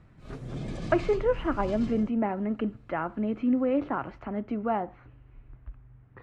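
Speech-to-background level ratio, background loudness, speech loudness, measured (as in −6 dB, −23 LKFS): 10.5 dB, −39.5 LKFS, −29.0 LKFS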